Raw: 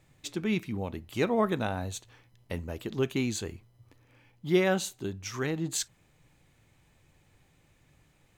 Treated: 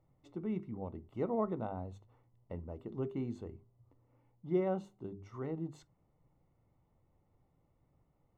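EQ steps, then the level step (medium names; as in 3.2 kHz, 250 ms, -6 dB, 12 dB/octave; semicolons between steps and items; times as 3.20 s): Savitzky-Golay filter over 65 samples; hum notches 50/100/150/200/250/300/350/400 Hz; -7.0 dB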